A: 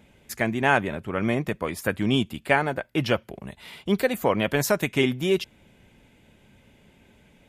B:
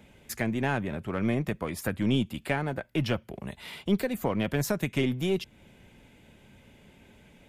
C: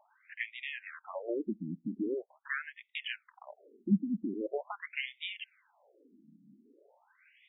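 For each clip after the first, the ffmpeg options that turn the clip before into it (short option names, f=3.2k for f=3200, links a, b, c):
-filter_complex "[0:a]acrossover=split=270[a][b];[b]acompressor=threshold=-35dB:ratio=2[c];[a][c]amix=inputs=2:normalize=0,asplit=2[d][e];[e]aeval=exprs='clip(val(0),-1,0.0178)':c=same,volume=-5dB[f];[d][f]amix=inputs=2:normalize=0,volume=-3dB"
-af "afftfilt=real='re*between(b*sr/1024,220*pow(2700/220,0.5+0.5*sin(2*PI*0.43*pts/sr))/1.41,220*pow(2700/220,0.5+0.5*sin(2*PI*0.43*pts/sr))*1.41)':imag='im*between(b*sr/1024,220*pow(2700/220,0.5+0.5*sin(2*PI*0.43*pts/sr))/1.41,220*pow(2700/220,0.5+0.5*sin(2*PI*0.43*pts/sr))*1.41)':win_size=1024:overlap=0.75"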